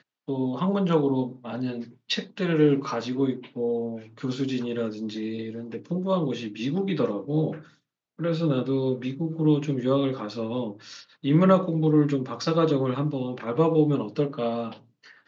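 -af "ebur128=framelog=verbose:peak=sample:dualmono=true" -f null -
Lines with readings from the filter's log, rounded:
Integrated loudness:
  I:         -23.0 LUFS
  Threshold: -33.3 LUFS
Loudness range:
  LRA:         5.8 LU
  Threshold: -43.2 LUFS
  LRA low:   -26.5 LUFS
  LRA high:  -20.6 LUFS
Sample peak:
  Peak:       -6.4 dBFS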